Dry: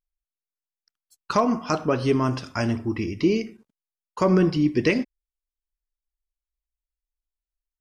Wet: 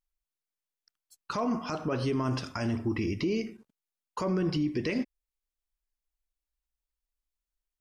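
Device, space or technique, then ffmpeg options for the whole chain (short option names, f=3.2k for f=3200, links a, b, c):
stacked limiters: -af "alimiter=limit=-13dB:level=0:latency=1:release=421,alimiter=limit=-18dB:level=0:latency=1:release=115,alimiter=limit=-21.5dB:level=0:latency=1:release=14"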